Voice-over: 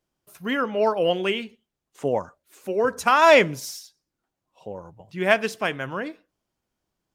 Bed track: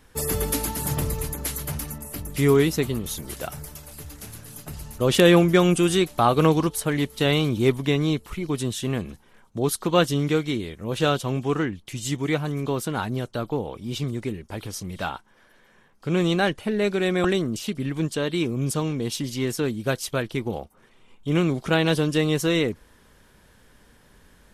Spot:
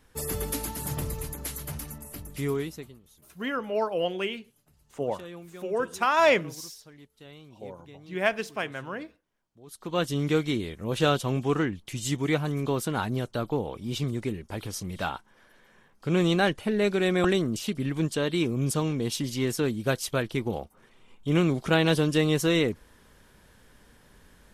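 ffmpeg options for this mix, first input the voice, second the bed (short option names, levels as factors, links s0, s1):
-filter_complex "[0:a]adelay=2950,volume=0.501[s0];[1:a]volume=10,afade=t=out:st=2.08:d=0.91:silence=0.0841395,afade=t=in:st=9.66:d=0.74:silence=0.0501187[s1];[s0][s1]amix=inputs=2:normalize=0"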